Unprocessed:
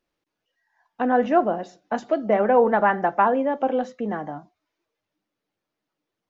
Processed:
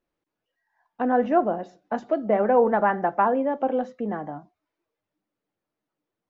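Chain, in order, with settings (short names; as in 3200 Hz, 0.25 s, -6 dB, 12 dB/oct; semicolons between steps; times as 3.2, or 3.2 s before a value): high shelf 2500 Hz -10 dB; gain -1 dB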